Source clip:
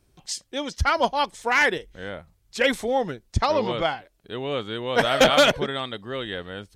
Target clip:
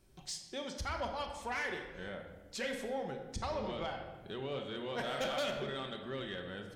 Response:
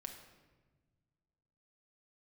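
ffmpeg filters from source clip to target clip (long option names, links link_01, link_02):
-filter_complex "[0:a]acompressor=threshold=-42dB:ratio=2[link_01];[1:a]atrim=start_sample=2205[link_02];[link_01][link_02]afir=irnorm=-1:irlink=0,asoftclip=type=tanh:threshold=-31dB,volume=2dB"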